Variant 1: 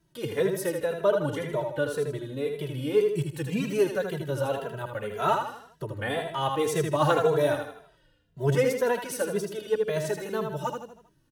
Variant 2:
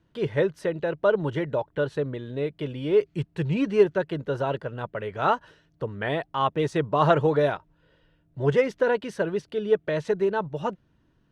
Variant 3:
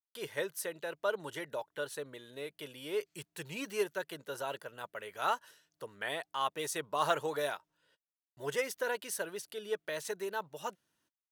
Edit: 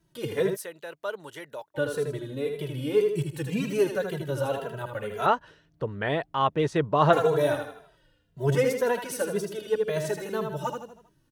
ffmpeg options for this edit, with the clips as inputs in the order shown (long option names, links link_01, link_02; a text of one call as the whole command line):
ffmpeg -i take0.wav -i take1.wav -i take2.wav -filter_complex "[0:a]asplit=3[link_01][link_02][link_03];[link_01]atrim=end=0.57[link_04];[2:a]atrim=start=0.53:end=1.78[link_05];[link_02]atrim=start=1.74:end=5.262[link_06];[1:a]atrim=start=5.258:end=7.132[link_07];[link_03]atrim=start=7.128[link_08];[link_04][link_05]acrossfade=duration=0.04:curve1=tri:curve2=tri[link_09];[link_09][link_06]acrossfade=duration=0.04:curve1=tri:curve2=tri[link_10];[link_10][link_07]acrossfade=duration=0.004:curve1=hsin:curve2=hsin[link_11];[link_11][link_08]acrossfade=duration=0.004:curve1=hsin:curve2=hsin" out.wav